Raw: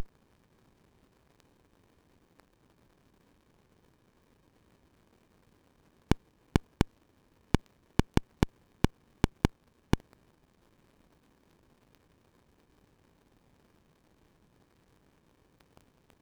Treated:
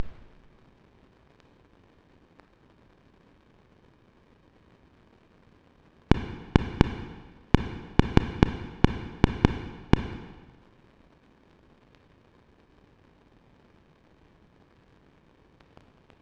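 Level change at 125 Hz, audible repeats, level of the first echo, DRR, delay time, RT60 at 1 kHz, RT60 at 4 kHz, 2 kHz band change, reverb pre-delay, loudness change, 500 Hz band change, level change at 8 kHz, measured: +7.0 dB, no echo audible, no echo audible, 8.0 dB, no echo audible, 1.4 s, 1.2 s, +7.0 dB, 27 ms, +6.5 dB, +7.0 dB, can't be measured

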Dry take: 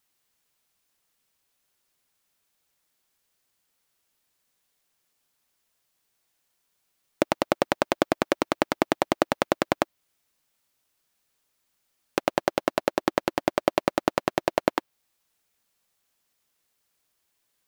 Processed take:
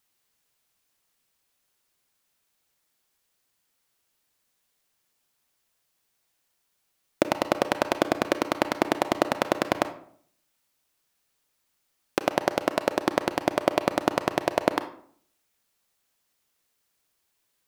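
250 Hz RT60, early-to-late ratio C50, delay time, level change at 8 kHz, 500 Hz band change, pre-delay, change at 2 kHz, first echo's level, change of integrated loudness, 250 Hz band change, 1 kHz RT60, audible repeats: 0.70 s, 13.0 dB, no echo audible, +0.5 dB, 0.0 dB, 29 ms, +0.5 dB, no echo audible, 0.0 dB, 0.0 dB, 0.55 s, no echo audible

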